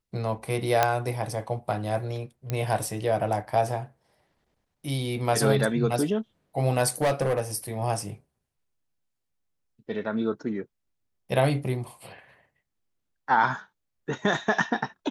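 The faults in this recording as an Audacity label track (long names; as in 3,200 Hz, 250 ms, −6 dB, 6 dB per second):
0.830000	0.830000	click −6 dBFS
2.500000	2.500000	click −15 dBFS
7.010000	7.400000	clipping −19.5 dBFS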